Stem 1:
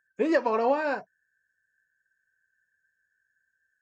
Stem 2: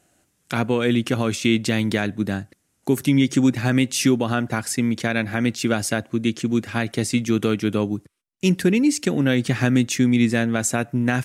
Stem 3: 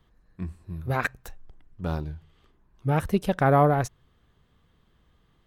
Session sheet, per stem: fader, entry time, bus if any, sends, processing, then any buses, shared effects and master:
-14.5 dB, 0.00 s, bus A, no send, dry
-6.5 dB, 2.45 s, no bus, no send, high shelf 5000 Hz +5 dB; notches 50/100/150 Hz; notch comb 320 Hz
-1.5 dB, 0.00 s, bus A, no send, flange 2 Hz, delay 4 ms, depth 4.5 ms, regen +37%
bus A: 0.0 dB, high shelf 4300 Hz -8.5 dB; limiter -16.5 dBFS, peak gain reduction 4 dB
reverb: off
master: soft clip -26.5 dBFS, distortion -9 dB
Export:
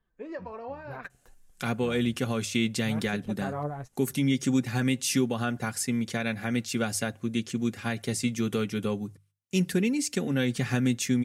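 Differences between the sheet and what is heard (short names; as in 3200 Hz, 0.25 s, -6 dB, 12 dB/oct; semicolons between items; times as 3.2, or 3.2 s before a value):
stem 2: entry 2.45 s -> 1.10 s; stem 3 -1.5 dB -> -10.5 dB; master: missing soft clip -26.5 dBFS, distortion -9 dB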